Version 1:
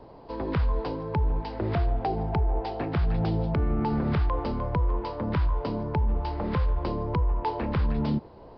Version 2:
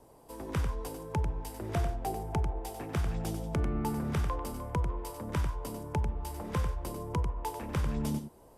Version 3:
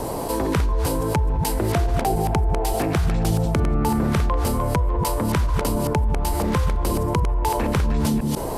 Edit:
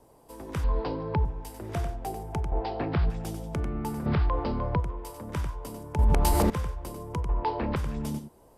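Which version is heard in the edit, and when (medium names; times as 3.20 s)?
2
0.64–1.25 s: from 1
2.52–3.10 s: from 1
4.06–4.80 s: from 1
5.99–6.50 s: from 3
7.29–7.76 s: from 1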